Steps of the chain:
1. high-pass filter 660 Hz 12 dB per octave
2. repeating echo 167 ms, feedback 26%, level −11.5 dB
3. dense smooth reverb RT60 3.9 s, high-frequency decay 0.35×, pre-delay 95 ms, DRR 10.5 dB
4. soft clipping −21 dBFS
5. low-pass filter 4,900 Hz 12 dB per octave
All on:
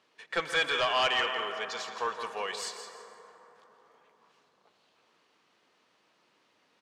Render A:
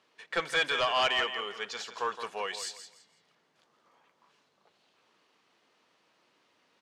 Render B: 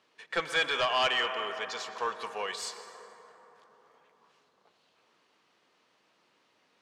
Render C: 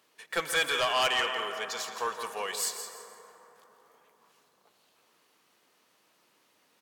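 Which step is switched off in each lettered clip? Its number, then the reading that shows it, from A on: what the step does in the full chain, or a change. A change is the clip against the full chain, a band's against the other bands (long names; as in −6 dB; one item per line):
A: 3, change in momentary loudness spread −2 LU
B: 2, change in momentary loudness spread −2 LU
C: 5, 8 kHz band +8.5 dB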